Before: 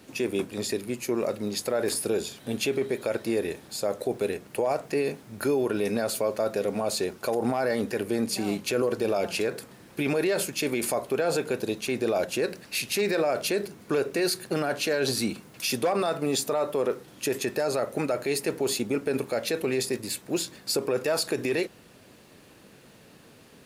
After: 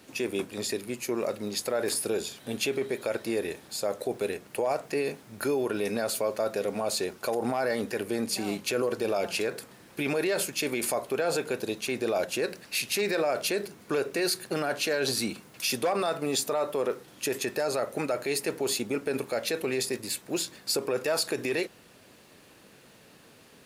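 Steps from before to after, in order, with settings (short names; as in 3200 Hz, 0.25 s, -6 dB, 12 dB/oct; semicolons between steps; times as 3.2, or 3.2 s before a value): low shelf 430 Hz -5 dB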